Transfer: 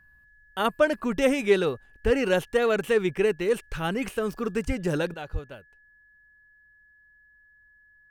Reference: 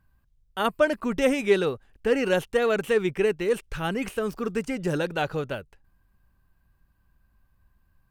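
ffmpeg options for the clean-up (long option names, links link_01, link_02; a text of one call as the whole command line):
ffmpeg -i in.wav -filter_complex "[0:a]bandreject=frequency=1700:width=30,asplit=3[link_01][link_02][link_03];[link_01]afade=type=out:start_time=2.04:duration=0.02[link_04];[link_02]highpass=frequency=140:width=0.5412,highpass=frequency=140:width=1.3066,afade=type=in:start_time=2.04:duration=0.02,afade=type=out:start_time=2.16:duration=0.02[link_05];[link_03]afade=type=in:start_time=2.16:duration=0.02[link_06];[link_04][link_05][link_06]amix=inputs=3:normalize=0,asplit=3[link_07][link_08][link_09];[link_07]afade=type=out:start_time=4.66:duration=0.02[link_10];[link_08]highpass=frequency=140:width=0.5412,highpass=frequency=140:width=1.3066,afade=type=in:start_time=4.66:duration=0.02,afade=type=out:start_time=4.78:duration=0.02[link_11];[link_09]afade=type=in:start_time=4.78:duration=0.02[link_12];[link_10][link_11][link_12]amix=inputs=3:normalize=0,asplit=3[link_13][link_14][link_15];[link_13]afade=type=out:start_time=5.32:duration=0.02[link_16];[link_14]highpass=frequency=140:width=0.5412,highpass=frequency=140:width=1.3066,afade=type=in:start_time=5.32:duration=0.02,afade=type=out:start_time=5.44:duration=0.02[link_17];[link_15]afade=type=in:start_time=5.44:duration=0.02[link_18];[link_16][link_17][link_18]amix=inputs=3:normalize=0,asetnsamples=nb_out_samples=441:pad=0,asendcmd='5.14 volume volume 11dB',volume=0dB" out.wav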